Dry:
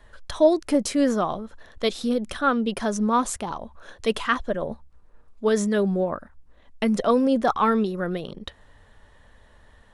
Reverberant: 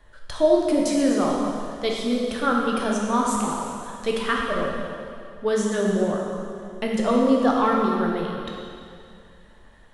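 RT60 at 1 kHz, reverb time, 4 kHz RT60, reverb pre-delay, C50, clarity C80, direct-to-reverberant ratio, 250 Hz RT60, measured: 2.4 s, 2.4 s, 2.2 s, 5 ms, 0.0 dB, 1.0 dB, −2.0 dB, 2.4 s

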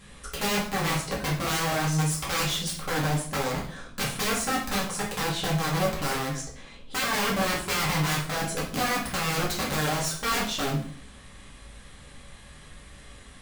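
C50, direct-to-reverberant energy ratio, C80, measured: 6.0 dB, −5.0 dB, 10.5 dB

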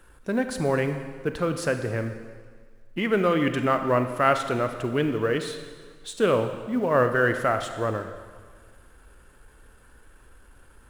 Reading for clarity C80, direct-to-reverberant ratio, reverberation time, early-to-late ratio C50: 9.5 dB, 7.5 dB, 1.7 s, 8.5 dB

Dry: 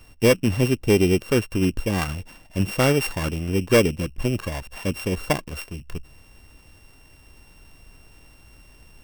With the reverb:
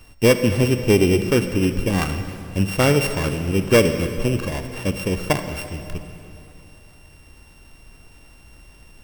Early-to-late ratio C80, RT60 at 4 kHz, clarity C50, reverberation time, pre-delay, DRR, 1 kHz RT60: 9.0 dB, 2.5 s, 8.0 dB, 2.8 s, 36 ms, 8.0 dB, 2.8 s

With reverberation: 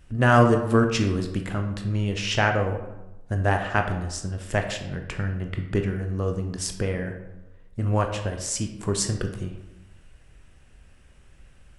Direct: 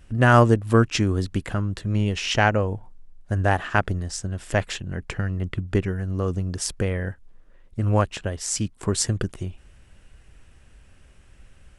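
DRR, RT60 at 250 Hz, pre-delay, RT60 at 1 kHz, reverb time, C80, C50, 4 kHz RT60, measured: 4.5 dB, 1.0 s, 16 ms, 1.0 s, 1.0 s, 10.0 dB, 7.5 dB, 0.55 s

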